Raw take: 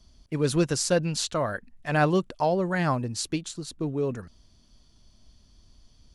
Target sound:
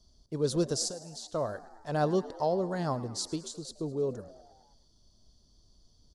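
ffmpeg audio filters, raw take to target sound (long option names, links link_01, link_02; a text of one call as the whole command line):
ffmpeg -i in.wav -filter_complex "[0:a]firequalizer=gain_entry='entry(280,0);entry(410,5);entry(2400,-14);entry(3500,1);entry(4900,5);entry(12000,-2)':delay=0.05:min_phase=1,asettb=1/sr,asplit=3[link_01][link_02][link_03];[link_01]atrim=end=0.884[link_04];[link_02]atrim=start=0.88:end=1.34,asetpts=PTS-STARTPTS,afade=type=in:duration=0.004:curve=qsin,afade=type=out:start_time=0.456:duration=0.004:curve=qsin,acompressor=threshold=-34dB:ratio=6[link_05];[link_03]atrim=start=1.336[link_06];[link_04][link_05]acrossfade=duration=0.004:curve1=hsin:curve2=qsin[link_07];[link_07][link_06]acrossfade=duration=0.004:curve1=qsin:curve2=hsin,asplit=7[link_08][link_09][link_10][link_11][link_12][link_13][link_14];[link_09]adelay=106,afreqshift=71,volume=-18dB[link_15];[link_10]adelay=212,afreqshift=142,volume=-22.2dB[link_16];[link_11]adelay=318,afreqshift=213,volume=-26.3dB[link_17];[link_12]adelay=424,afreqshift=284,volume=-30.5dB[link_18];[link_13]adelay=530,afreqshift=355,volume=-34.6dB[link_19];[link_14]adelay=636,afreqshift=426,volume=-38.8dB[link_20];[link_08][link_15][link_16][link_17][link_18][link_19][link_20]amix=inputs=7:normalize=0,volume=-7dB" out.wav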